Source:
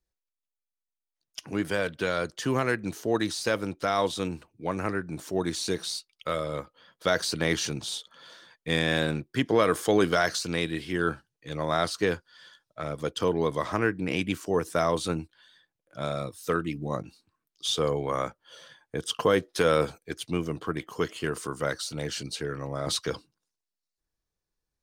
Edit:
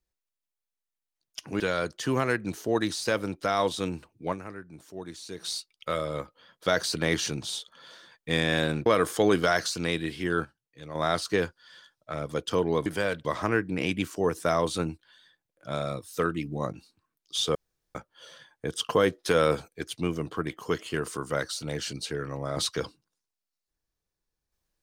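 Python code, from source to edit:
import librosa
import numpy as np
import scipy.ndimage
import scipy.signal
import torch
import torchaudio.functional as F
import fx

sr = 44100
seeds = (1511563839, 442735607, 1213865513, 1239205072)

y = fx.edit(x, sr, fx.move(start_s=1.6, length_s=0.39, to_s=13.55),
    fx.fade_down_up(start_s=4.71, length_s=1.14, db=-11.5, fade_s=0.4, curve='exp'),
    fx.cut(start_s=9.25, length_s=0.3),
    fx.fade_down_up(start_s=10.82, length_s=1.14, db=-8.5, fade_s=0.32, curve='log'),
    fx.room_tone_fill(start_s=17.85, length_s=0.4), tone=tone)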